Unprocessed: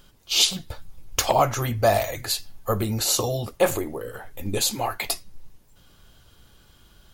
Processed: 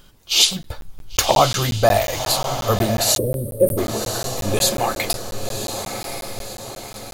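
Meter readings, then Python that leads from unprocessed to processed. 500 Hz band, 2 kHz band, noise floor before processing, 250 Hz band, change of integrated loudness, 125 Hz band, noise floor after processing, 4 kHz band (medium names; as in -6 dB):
+5.0 dB, +4.5 dB, -56 dBFS, +5.5 dB, +4.0 dB, +5.0 dB, -39 dBFS, +5.5 dB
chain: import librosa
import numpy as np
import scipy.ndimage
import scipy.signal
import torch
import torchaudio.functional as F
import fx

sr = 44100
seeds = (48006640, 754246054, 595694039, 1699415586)

y = fx.echo_diffused(x, sr, ms=1070, feedback_pct=51, wet_db=-7.0)
y = fx.spec_box(y, sr, start_s=3.17, length_s=0.61, low_hz=630.0, high_hz=8200.0, gain_db=-30)
y = fx.buffer_crackle(y, sr, first_s=0.63, period_s=0.18, block=512, kind='zero')
y = y * 10.0 ** (4.5 / 20.0)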